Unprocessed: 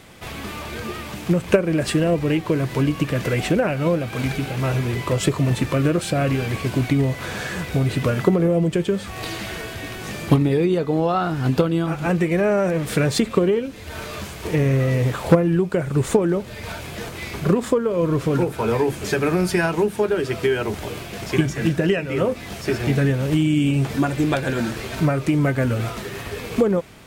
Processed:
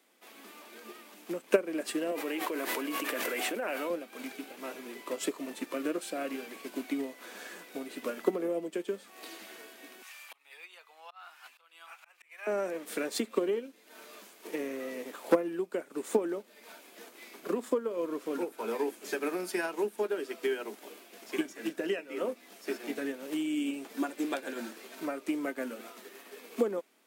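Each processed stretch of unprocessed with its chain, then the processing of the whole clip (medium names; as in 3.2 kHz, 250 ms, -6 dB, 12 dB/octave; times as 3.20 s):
2.11–3.90 s: high-pass 700 Hz 6 dB/octave + peaking EQ 5.2 kHz -5 dB 1.8 oct + level flattener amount 100%
10.02–12.47 s: high-pass 910 Hz 24 dB/octave + peaking EQ 2.5 kHz +6.5 dB 0.5 oct + slow attack 224 ms
whole clip: steep high-pass 230 Hz 48 dB/octave; treble shelf 10 kHz +11 dB; upward expansion 1.5:1, over -39 dBFS; trim -7.5 dB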